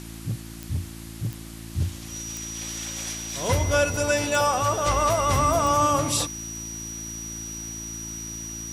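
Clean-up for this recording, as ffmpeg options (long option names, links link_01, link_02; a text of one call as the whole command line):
ffmpeg -i in.wav -af "adeclick=threshold=4,bandreject=frequency=55.9:width_type=h:width=4,bandreject=frequency=111.8:width_type=h:width=4,bandreject=frequency=167.7:width_type=h:width=4,bandreject=frequency=223.6:width_type=h:width=4,bandreject=frequency=279.5:width_type=h:width=4,bandreject=frequency=335.4:width_type=h:width=4,bandreject=frequency=5800:width=30,afwtdn=0.0063" out.wav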